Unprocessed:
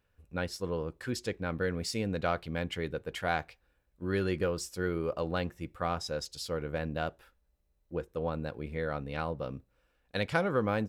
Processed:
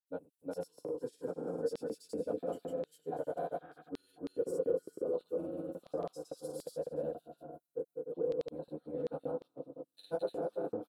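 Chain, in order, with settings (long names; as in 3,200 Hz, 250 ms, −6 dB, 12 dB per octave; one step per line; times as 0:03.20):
parametric band 2,100 Hz −13.5 dB 0.41 octaves
single-tap delay 289 ms −12.5 dB
feedback delay network reverb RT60 0.97 s, low-frequency decay 1.25×, high-frequency decay 0.45×, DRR −8 dB
healed spectral selection 0:03.59–0:03.94, 1,100–3,900 Hz before
downward compressor 2 to 1, threshold −38 dBFS, peak gain reduction 13 dB
drawn EQ curve 210 Hz 0 dB, 1,900 Hz −29 dB, 5,100 Hz −28 dB, 9,700 Hz −10 dB
auto-filter high-pass square 1.7 Hz 540–4,000 Hz
granular cloud 100 ms, grains 20 per second, spray 250 ms, pitch spread up and down by 0 semitones
level +8 dB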